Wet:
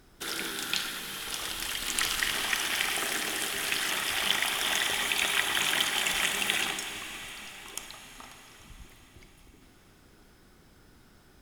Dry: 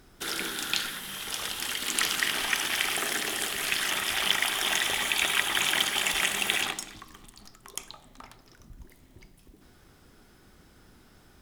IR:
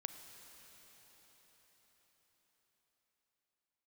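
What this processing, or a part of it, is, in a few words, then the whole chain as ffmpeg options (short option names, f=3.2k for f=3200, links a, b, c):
cathedral: -filter_complex "[0:a]asettb=1/sr,asplit=3[a][b][c];[a]atrim=end=1.064[d];[b]atrim=start=1.06:end=2.33,asetpts=PTS-STARTPTS,afade=t=in:d=0.004:c=qsin,afade=t=out:st=1.266:d=0.004:c=qsin,asubboost=boost=10.5:cutoff=91[e];[c]atrim=start=2.326[f];[d][e]acrossfade=d=0.004:c1=hsin:c2=qsin[g];[g][f]acrossfade=d=0.004:c1=qsin:c2=hsin[h];[1:a]atrim=start_sample=2205[i];[h][i]afir=irnorm=-1:irlink=0,volume=1.5dB"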